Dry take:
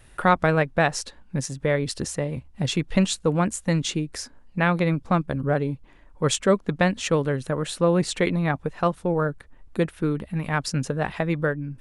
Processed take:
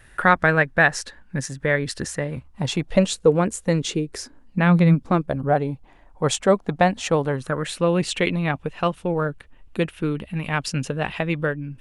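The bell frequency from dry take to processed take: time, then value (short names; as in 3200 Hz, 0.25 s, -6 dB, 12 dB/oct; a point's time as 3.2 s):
bell +10 dB 0.55 oct
2.23 s 1700 Hz
3.18 s 440 Hz
4.07 s 440 Hz
4.88 s 150 Hz
5.36 s 760 Hz
7.25 s 760 Hz
7.82 s 2800 Hz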